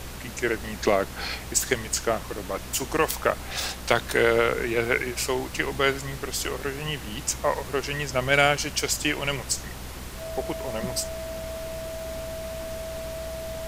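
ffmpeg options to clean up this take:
-af "adeclick=t=4,bandreject=f=62.4:t=h:w=4,bandreject=f=124.8:t=h:w=4,bandreject=f=187.2:t=h:w=4,bandreject=f=249.6:t=h:w=4,bandreject=f=650:w=30,afftdn=nr=30:nf=-37"

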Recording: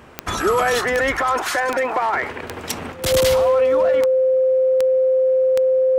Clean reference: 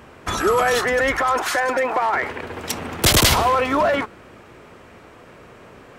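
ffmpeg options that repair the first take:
-af "adeclick=t=4,bandreject=f=520:w=30,asetnsamples=n=441:p=0,asendcmd='2.92 volume volume 8dB',volume=0dB"

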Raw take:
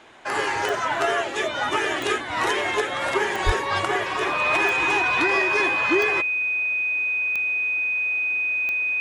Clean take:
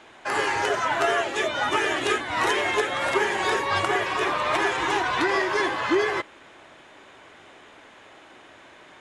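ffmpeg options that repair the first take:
-filter_complex "[0:a]adeclick=t=4,bandreject=f=2.5k:w=30,asplit=3[a][b][c];[a]afade=t=out:st=3.45:d=0.02[d];[b]highpass=f=140:w=0.5412,highpass=f=140:w=1.3066,afade=t=in:st=3.45:d=0.02,afade=t=out:st=3.57:d=0.02[e];[c]afade=t=in:st=3.57:d=0.02[f];[d][e][f]amix=inputs=3:normalize=0"

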